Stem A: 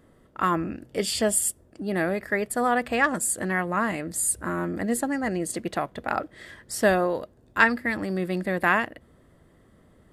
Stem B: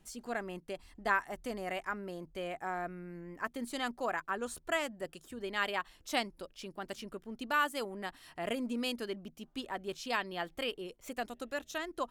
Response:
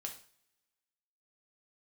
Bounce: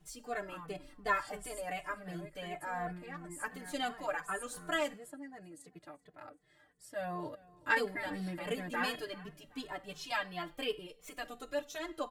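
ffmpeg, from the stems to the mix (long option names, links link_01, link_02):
-filter_complex "[0:a]adelay=100,volume=-10.5dB,afade=type=in:start_time=6.95:duration=0.28:silence=0.237137,asplit=2[link_01][link_02];[link_02]volume=-22.5dB[link_03];[1:a]aphaser=in_gain=1:out_gain=1:delay=3.5:decay=0.21:speed=1.4:type=triangular,volume=-3.5dB,asplit=3[link_04][link_05][link_06];[link_04]atrim=end=4.92,asetpts=PTS-STARTPTS,afade=type=out:start_time=4.916:duration=0.004:curve=hsin[link_07];[link_05]atrim=start=4.92:end=7.76,asetpts=PTS-STARTPTS,volume=0[link_08];[link_06]atrim=start=7.76,asetpts=PTS-STARTPTS,afade=type=in:duration=0.004:curve=hsin[link_09];[link_07][link_08][link_09]concat=n=3:v=0:a=1,asplit=3[link_10][link_11][link_12];[link_11]volume=-4.5dB[link_13];[link_12]apad=whole_len=451123[link_14];[link_01][link_14]sidechaincompress=threshold=-40dB:ratio=8:attack=28:release=118[link_15];[2:a]atrim=start_sample=2205[link_16];[link_13][link_16]afir=irnorm=-1:irlink=0[link_17];[link_03]aecho=0:1:384|768|1152|1536|1920|2304:1|0.43|0.185|0.0795|0.0342|0.0147[link_18];[link_15][link_10][link_17][link_18]amix=inputs=4:normalize=0,aecho=1:1:6.7:0.88,asplit=2[link_19][link_20];[link_20]adelay=2.3,afreqshift=-2.8[link_21];[link_19][link_21]amix=inputs=2:normalize=1"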